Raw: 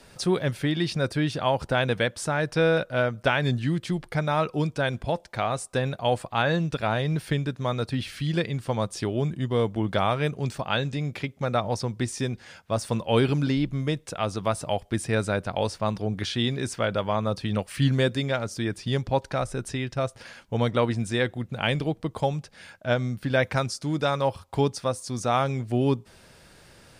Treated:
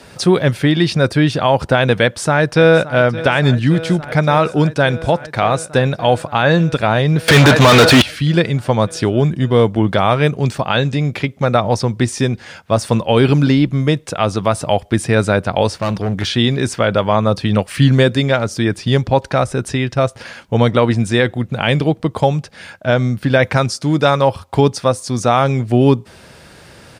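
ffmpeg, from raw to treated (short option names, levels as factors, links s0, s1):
-filter_complex "[0:a]asplit=2[s0][s1];[s1]afade=t=in:st=2.03:d=0.01,afade=t=out:st=2.97:d=0.01,aecho=0:1:570|1140|1710|2280|2850|3420|3990|4560|5130|5700|6270|6840:0.16788|0.142698|0.121294|0.1031|0.0876346|0.0744894|0.063316|0.0538186|0.0457458|0.0388839|0.0330514|0.0280937[s2];[s0][s2]amix=inputs=2:normalize=0,asettb=1/sr,asplit=3[s3][s4][s5];[s3]atrim=end=7.284[s6];[s4]atrim=start=7.28:end=8.02,asetpts=PTS-STARTPTS,afade=t=in:d=0.004:c=qsin,afade=t=out:st=0.736:d=0.004:c=qsin,asplit=2[s7][s8];[s8]highpass=f=720:p=1,volume=79.4,asoftclip=type=tanh:threshold=0.251[s9];[s7][s9]amix=inputs=2:normalize=0,lowpass=f=6400:p=1,volume=0.501[s10];[s5]atrim=start=8.016[s11];[s6][s10]acrossfade=d=0.004:c1=hsin:c2=qsin[s12];[s12][s11]acrossfade=d=0.004:c1=qsin:c2=hsin,asplit=3[s13][s14][s15];[s13]afade=t=out:st=15.79:d=0.02[s16];[s14]asoftclip=type=hard:threshold=0.0501,afade=t=in:st=15.79:d=0.02,afade=t=out:st=16.26:d=0.02[s17];[s15]afade=t=in:st=16.26:d=0.02[s18];[s16][s17][s18]amix=inputs=3:normalize=0,highpass=55,highshelf=f=5200:g=-4.5,alimiter=level_in=4.47:limit=0.891:release=50:level=0:latency=1,volume=0.891"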